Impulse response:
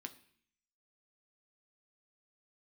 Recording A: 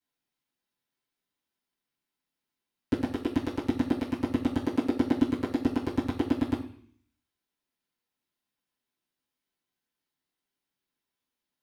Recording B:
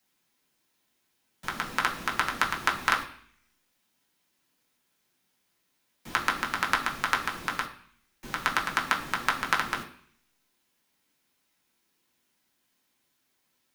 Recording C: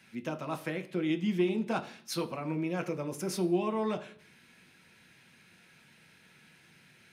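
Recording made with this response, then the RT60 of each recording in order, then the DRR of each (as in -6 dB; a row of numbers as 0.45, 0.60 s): C; 0.55, 0.55, 0.55 s; -10.5, -1.5, 6.0 dB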